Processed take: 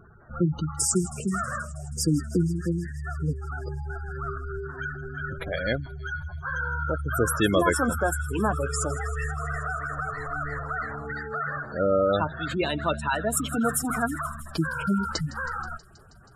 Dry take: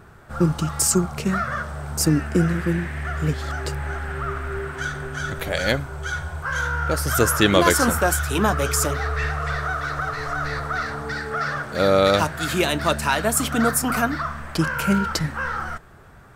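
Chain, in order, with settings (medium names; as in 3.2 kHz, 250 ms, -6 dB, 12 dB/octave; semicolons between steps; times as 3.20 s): spectral gate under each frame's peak -15 dB strong; feedback echo behind a high-pass 160 ms, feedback 77%, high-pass 4.7 kHz, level -15 dB; trim -4.5 dB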